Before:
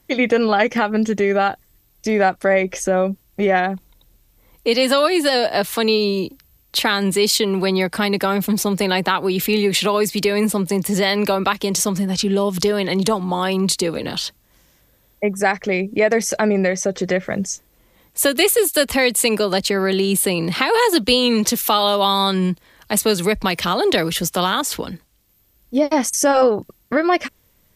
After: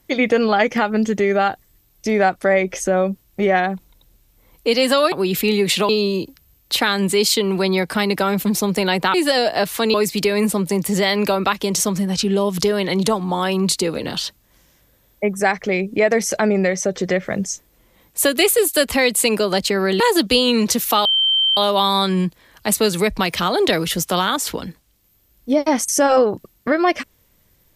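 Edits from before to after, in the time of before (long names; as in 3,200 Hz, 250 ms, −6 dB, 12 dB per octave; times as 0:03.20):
0:05.12–0:05.92: swap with 0:09.17–0:09.94
0:20.00–0:20.77: remove
0:21.82: insert tone 3,120 Hz −13.5 dBFS 0.52 s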